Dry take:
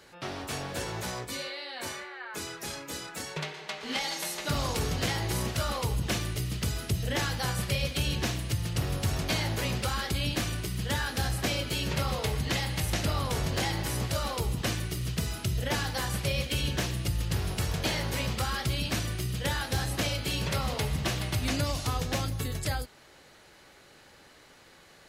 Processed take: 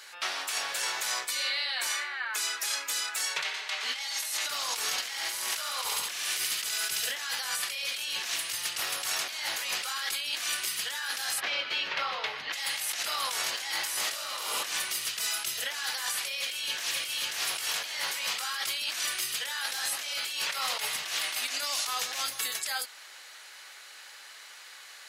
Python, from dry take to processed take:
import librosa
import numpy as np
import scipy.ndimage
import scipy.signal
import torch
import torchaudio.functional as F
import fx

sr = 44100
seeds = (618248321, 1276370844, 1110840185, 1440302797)

y = fx.echo_thinned(x, sr, ms=70, feedback_pct=63, hz=420.0, wet_db=-5.5, at=(4.91, 7.2))
y = fx.air_absorb(y, sr, metres=280.0, at=(11.39, 12.52), fade=0.02)
y = fx.reverb_throw(y, sr, start_s=13.99, length_s=0.59, rt60_s=1.2, drr_db=-4.0)
y = fx.echo_throw(y, sr, start_s=16.4, length_s=0.78, ms=540, feedback_pct=40, wet_db=-2.5)
y = fx.highpass(y, sr, hz=160.0, slope=12, at=(21.16, 21.88))
y = scipy.signal.sosfilt(scipy.signal.butter(2, 1300.0, 'highpass', fs=sr, output='sos'), y)
y = fx.peak_eq(y, sr, hz=8600.0, db=2.0, octaves=1.6)
y = fx.over_compress(y, sr, threshold_db=-39.0, ratio=-1.0)
y = y * 10.0 ** (6.5 / 20.0)